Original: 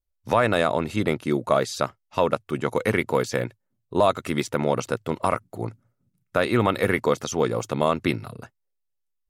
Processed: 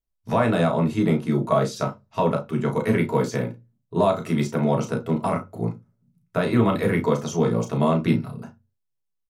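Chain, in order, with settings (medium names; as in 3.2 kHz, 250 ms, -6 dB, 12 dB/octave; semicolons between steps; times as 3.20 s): doubling 35 ms -7.5 dB; on a send: reverberation RT60 0.20 s, pre-delay 3 ms, DRR 1 dB; on the sum: trim -5.5 dB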